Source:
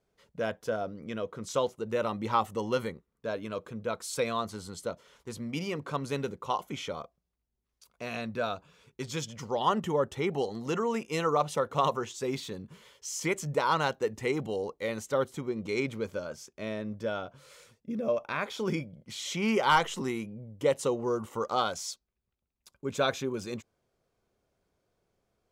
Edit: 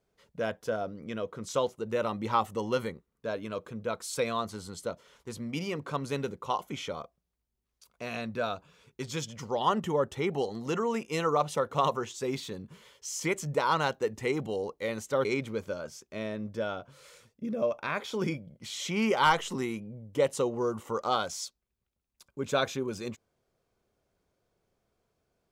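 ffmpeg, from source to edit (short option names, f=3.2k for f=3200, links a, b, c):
-filter_complex "[0:a]asplit=2[a][b];[a]atrim=end=15.252[c];[b]atrim=start=15.708[d];[c][d]acrossfade=d=0.004:c1=hsin:c2=hsin"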